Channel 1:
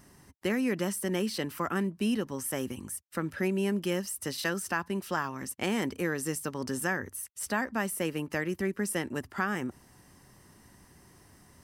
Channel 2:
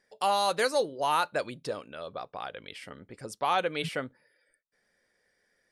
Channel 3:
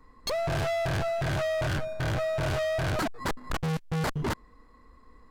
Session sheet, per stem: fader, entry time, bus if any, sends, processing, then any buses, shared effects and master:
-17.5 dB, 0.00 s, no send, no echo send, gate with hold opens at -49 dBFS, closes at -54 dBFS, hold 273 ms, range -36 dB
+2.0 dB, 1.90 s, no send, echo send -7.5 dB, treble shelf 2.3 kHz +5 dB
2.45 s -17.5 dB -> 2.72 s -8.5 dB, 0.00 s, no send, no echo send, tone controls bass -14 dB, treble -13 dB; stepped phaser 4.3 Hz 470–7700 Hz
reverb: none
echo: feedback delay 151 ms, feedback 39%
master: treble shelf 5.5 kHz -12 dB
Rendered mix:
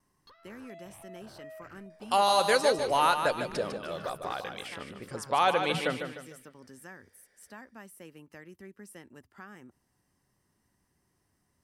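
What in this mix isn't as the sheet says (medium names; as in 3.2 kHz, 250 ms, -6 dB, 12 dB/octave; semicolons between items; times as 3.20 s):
stem 2: missing treble shelf 2.3 kHz +5 dB; master: missing treble shelf 5.5 kHz -12 dB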